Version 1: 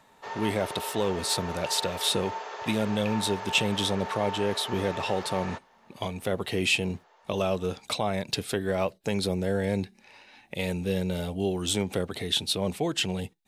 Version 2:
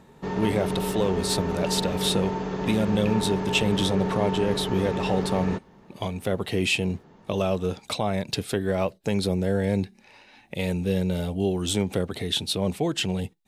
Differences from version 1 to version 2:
background: remove high-pass 560 Hz 24 dB/octave; master: add bass shelf 420 Hz +5 dB

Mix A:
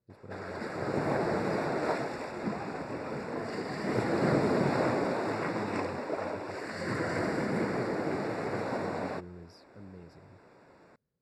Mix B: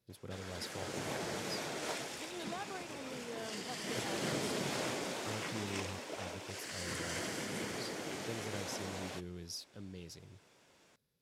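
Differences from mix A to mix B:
background -11.5 dB; master: remove boxcar filter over 14 samples

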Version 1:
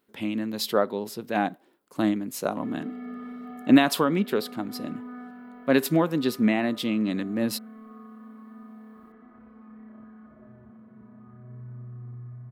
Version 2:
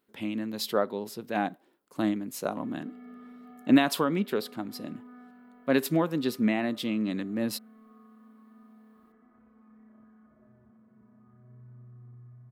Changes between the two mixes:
speech -3.5 dB; background -9.5 dB

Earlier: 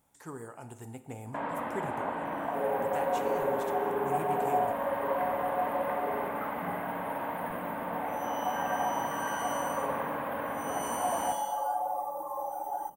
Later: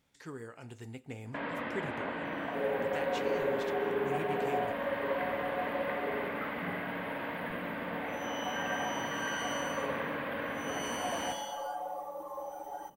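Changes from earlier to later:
speech: send -11.5 dB; master: add FFT filter 490 Hz 0 dB, 840 Hz -9 dB, 1.9 kHz +5 dB, 4.6 kHz +7 dB, 9.1 kHz -10 dB

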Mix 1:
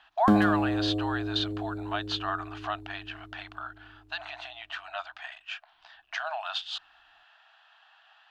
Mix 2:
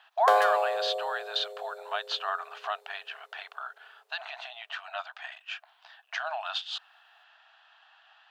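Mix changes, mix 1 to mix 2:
background +9.0 dB; master: add brick-wall FIR high-pass 430 Hz

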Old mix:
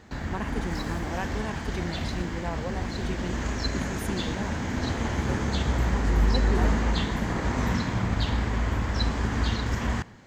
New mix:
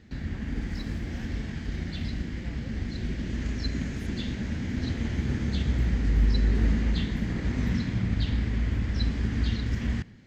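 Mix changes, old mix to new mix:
speech -8.0 dB; master: add FFT filter 240 Hz 0 dB, 1 kHz -17 dB, 2 kHz -4 dB, 5 kHz -5 dB, 7.1 kHz -11 dB

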